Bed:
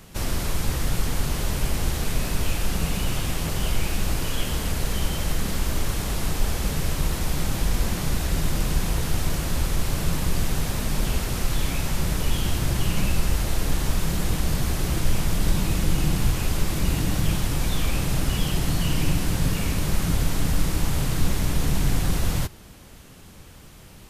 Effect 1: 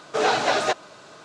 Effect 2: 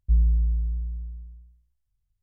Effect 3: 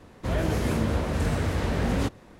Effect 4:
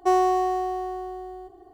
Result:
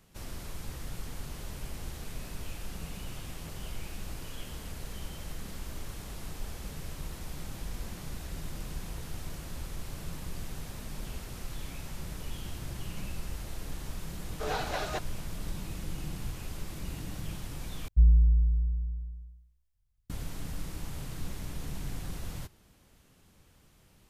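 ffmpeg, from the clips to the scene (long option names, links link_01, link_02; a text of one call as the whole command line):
ffmpeg -i bed.wav -i cue0.wav -i cue1.wav -filter_complex "[0:a]volume=-15.5dB,asplit=2[link_01][link_02];[link_01]atrim=end=17.884[link_03];[2:a]atrim=end=2.22[link_04];[link_02]atrim=start=20.096[link_05];[1:a]atrim=end=1.24,asetpts=PTS-STARTPTS,volume=-13dB,afade=type=in:duration=0.004:curve=hsin,afade=type=out:start_time=1.236:duration=0.004:curve=hsin,adelay=14260[link_06];[link_03][link_04]acrossfade=duration=0.004:curve1=hsin:curve2=hsin[link_07];[link_07][link_05]acrossfade=duration=0.004:curve1=hsin:curve2=hsin[link_08];[link_08][link_06]amix=inputs=2:normalize=0" out.wav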